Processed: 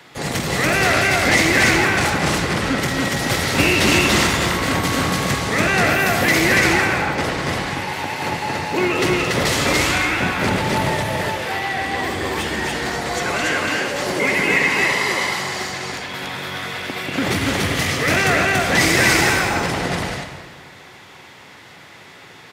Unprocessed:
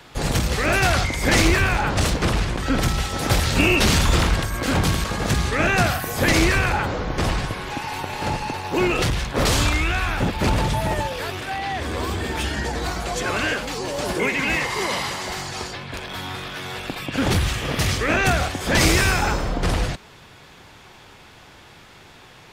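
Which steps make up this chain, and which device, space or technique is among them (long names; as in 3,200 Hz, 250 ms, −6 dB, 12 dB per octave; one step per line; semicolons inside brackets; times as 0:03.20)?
stadium PA (high-pass filter 130 Hz 12 dB per octave; parametric band 2,000 Hz +7.5 dB 0.21 octaves; loudspeakers that aren't time-aligned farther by 75 metres −10 dB, 98 metres −1 dB; convolution reverb RT60 1.8 s, pre-delay 55 ms, DRR 7 dB)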